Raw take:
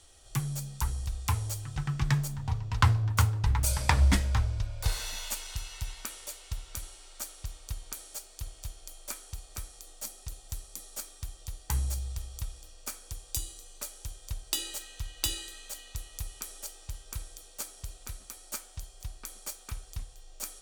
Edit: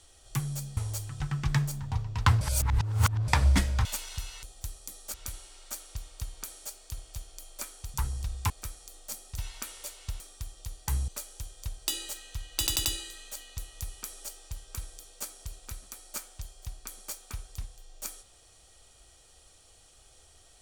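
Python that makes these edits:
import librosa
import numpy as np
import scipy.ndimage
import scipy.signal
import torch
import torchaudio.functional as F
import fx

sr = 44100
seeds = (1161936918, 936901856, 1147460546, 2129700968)

y = fx.edit(x, sr, fx.move(start_s=0.77, length_s=0.56, to_s=9.43),
    fx.reverse_span(start_s=2.97, length_s=0.87),
    fx.cut(start_s=4.41, length_s=0.82),
    fx.swap(start_s=5.81, length_s=0.82, other_s=10.31, other_length_s=0.71),
    fx.cut(start_s=11.9, length_s=1.83),
    fx.stutter(start_s=15.23, slice_s=0.09, count=4), tone=tone)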